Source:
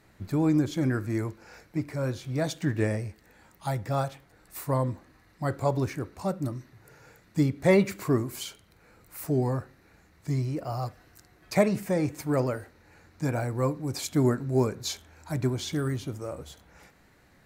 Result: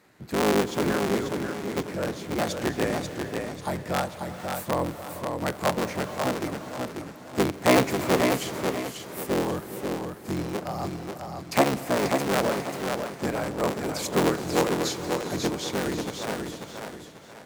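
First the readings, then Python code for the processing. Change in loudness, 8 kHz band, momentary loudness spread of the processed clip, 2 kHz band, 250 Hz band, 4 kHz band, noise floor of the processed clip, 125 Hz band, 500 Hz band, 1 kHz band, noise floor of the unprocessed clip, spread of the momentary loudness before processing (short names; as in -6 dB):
+1.5 dB, +6.0 dB, 11 LU, +7.0 dB, +1.0 dB, +7.5 dB, -44 dBFS, -5.0 dB, +3.5 dB, +7.5 dB, -60 dBFS, 13 LU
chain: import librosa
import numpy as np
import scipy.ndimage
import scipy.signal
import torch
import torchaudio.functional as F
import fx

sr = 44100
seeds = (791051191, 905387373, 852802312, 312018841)

y = fx.cycle_switch(x, sr, every=3, mode='inverted')
y = scipy.signal.sosfilt(scipy.signal.butter(2, 150.0, 'highpass', fs=sr, output='sos'), y)
y = fx.rev_gated(y, sr, seeds[0], gate_ms=500, shape='rising', drr_db=11.5)
y = fx.echo_warbled(y, sr, ms=540, feedback_pct=34, rate_hz=2.8, cents=61, wet_db=-5)
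y = y * 10.0 ** (1.5 / 20.0)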